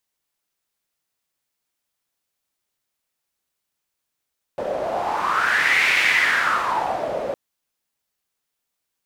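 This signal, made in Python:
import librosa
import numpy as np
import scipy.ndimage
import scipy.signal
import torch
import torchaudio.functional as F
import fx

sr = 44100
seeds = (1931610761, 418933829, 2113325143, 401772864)

y = fx.wind(sr, seeds[0], length_s=2.76, low_hz=550.0, high_hz=2200.0, q=4.9, gusts=1, swing_db=8.5)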